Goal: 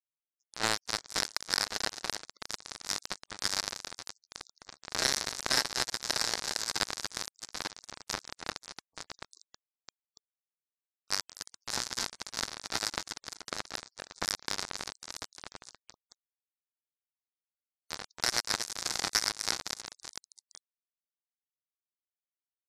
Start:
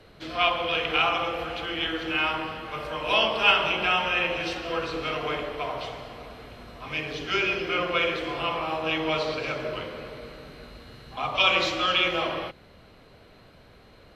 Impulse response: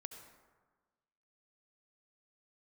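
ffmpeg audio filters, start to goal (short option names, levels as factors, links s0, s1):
-filter_complex "[0:a]asplit=2[s0][s1];[s1]aecho=0:1:140|322|558.6|866.2|1266:0.631|0.398|0.251|0.158|0.1[s2];[s0][s2]amix=inputs=2:normalize=0,acompressor=threshold=0.0178:ratio=3,acrusher=bits=3:mix=0:aa=0.5,highshelf=f=8600:g=-4.5,aexciter=amount=9.1:drive=4.3:freq=6800,afftfilt=real='re*gte(hypot(re,im),0.000398)':imag='im*gte(hypot(re,im),0.000398)':win_size=1024:overlap=0.75,asetrate=27518,aresample=44100,dynaudnorm=f=120:g=9:m=1.68,alimiter=limit=0.211:level=0:latency=1:release=356,equalizer=f=1200:w=0.66:g=4,volume=1.58"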